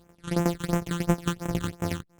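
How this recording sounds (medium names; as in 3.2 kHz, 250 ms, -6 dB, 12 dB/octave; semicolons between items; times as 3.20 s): a buzz of ramps at a fixed pitch in blocks of 256 samples; tremolo saw down 11 Hz, depth 80%; phasing stages 8, 2.9 Hz, lowest notch 630–4400 Hz; Opus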